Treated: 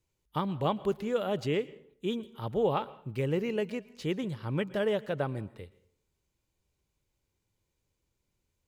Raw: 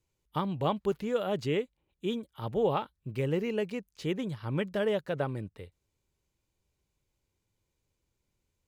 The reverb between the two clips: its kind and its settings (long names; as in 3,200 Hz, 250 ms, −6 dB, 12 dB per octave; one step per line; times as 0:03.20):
dense smooth reverb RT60 0.61 s, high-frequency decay 0.75×, pre-delay 105 ms, DRR 18.5 dB